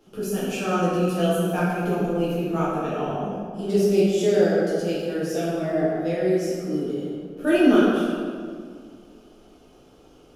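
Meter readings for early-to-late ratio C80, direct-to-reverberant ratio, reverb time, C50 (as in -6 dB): -0.5 dB, -10.0 dB, 2.0 s, -2.5 dB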